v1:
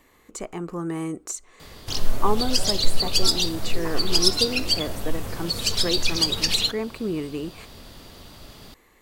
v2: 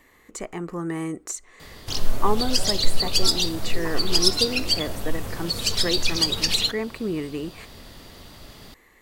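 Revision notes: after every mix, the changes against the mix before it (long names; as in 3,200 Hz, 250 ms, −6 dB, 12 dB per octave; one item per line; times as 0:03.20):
speech: add parametric band 1,900 Hz +7.5 dB 0.29 octaves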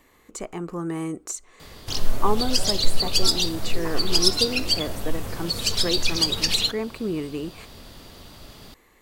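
speech: add parametric band 1,900 Hz −7.5 dB 0.29 octaves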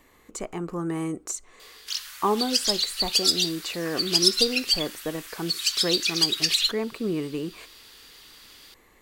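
background: add inverse Chebyshev high-pass filter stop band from 430 Hz, stop band 60 dB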